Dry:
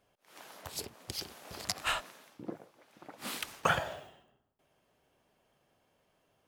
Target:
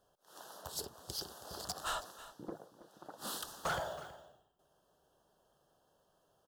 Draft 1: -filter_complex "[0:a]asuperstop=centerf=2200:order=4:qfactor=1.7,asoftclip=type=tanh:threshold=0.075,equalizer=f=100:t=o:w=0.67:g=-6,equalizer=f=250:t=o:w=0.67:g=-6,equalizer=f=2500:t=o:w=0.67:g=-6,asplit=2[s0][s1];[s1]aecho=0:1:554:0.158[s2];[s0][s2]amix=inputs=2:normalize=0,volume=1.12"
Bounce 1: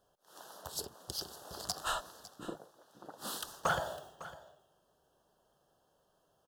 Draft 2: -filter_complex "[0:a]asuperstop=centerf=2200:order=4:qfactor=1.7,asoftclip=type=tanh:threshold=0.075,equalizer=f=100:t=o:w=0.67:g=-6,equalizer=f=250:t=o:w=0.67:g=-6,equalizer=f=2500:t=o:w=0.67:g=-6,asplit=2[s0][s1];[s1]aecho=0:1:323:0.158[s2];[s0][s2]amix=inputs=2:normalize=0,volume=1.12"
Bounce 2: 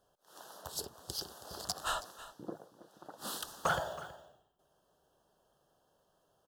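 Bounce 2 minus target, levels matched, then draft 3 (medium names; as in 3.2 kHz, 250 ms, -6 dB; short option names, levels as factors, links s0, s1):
saturation: distortion -7 dB
-filter_complex "[0:a]asuperstop=centerf=2200:order=4:qfactor=1.7,asoftclip=type=tanh:threshold=0.0266,equalizer=f=100:t=o:w=0.67:g=-6,equalizer=f=250:t=o:w=0.67:g=-6,equalizer=f=2500:t=o:w=0.67:g=-6,asplit=2[s0][s1];[s1]aecho=0:1:323:0.158[s2];[s0][s2]amix=inputs=2:normalize=0,volume=1.12"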